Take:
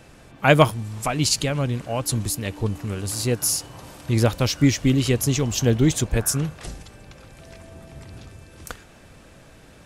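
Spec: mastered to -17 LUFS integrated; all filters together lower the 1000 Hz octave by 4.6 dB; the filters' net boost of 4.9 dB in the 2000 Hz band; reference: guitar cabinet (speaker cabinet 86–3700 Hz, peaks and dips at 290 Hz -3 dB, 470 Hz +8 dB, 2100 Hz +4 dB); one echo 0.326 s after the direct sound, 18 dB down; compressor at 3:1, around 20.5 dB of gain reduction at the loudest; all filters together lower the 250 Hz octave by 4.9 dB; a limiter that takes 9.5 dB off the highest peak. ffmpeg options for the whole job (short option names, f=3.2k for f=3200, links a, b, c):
-af "equalizer=f=250:t=o:g=-4.5,equalizer=f=1k:t=o:g=-8.5,equalizer=f=2k:t=o:g=6.5,acompressor=threshold=-40dB:ratio=3,alimiter=level_in=4.5dB:limit=-24dB:level=0:latency=1,volume=-4.5dB,highpass=86,equalizer=f=290:t=q:w=4:g=-3,equalizer=f=470:t=q:w=4:g=8,equalizer=f=2.1k:t=q:w=4:g=4,lowpass=f=3.7k:w=0.5412,lowpass=f=3.7k:w=1.3066,aecho=1:1:326:0.126,volume=25dB"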